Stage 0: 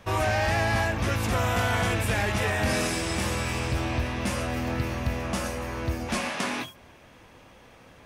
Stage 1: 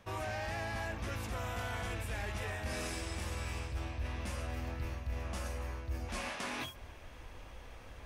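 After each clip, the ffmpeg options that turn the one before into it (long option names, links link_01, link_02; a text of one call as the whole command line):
ffmpeg -i in.wav -af "asubboost=boost=8.5:cutoff=57,areverse,acompressor=threshold=-36dB:ratio=4,areverse,volume=-2dB" out.wav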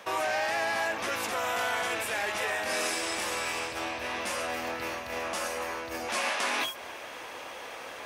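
ffmpeg -i in.wav -filter_complex "[0:a]highpass=440,asplit=2[link_01][link_02];[link_02]alimiter=level_in=16dB:limit=-24dB:level=0:latency=1:release=191,volume=-16dB,volume=3dB[link_03];[link_01][link_03]amix=inputs=2:normalize=0,volume=7.5dB" out.wav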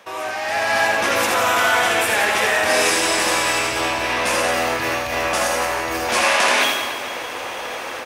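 ffmpeg -i in.wav -af "dynaudnorm=framelen=380:gausssize=3:maxgain=11dB,aecho=1:1:80|176|291.2|429.4|595.3:0.631|0.398|0.251|0.158|0.1" out.wav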